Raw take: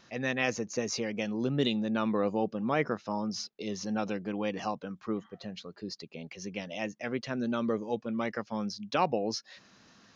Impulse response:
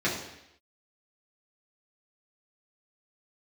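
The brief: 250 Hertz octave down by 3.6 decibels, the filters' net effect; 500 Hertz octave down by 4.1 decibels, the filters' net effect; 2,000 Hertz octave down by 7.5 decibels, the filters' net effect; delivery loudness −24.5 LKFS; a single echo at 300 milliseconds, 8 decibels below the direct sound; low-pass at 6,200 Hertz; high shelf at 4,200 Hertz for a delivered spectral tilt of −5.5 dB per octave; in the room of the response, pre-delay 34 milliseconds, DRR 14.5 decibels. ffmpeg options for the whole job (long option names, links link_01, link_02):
-filter_complex "[0:a]lowpass=6200,equalizer=frequency=250:width_type=o:gain=-3.5,equalizer=frequency=500:width_type=o:gain=-3.5,equalizer=frequency=2000:width_type=o:gain=-8.5,highshelf=frequency=4200:gain=-3,aecho=1:1:300:0.398,asplit=2[link_01][link_02];[1:a]atrim=start_sample=2205,adelay=34[link_03];[link_02][link_03]afir=irnorm=-1:irlink=0,volume=-26.5dB[link_04];[link_01][link_04]amix=inputs=2:normalize=0,volume=11.5dB"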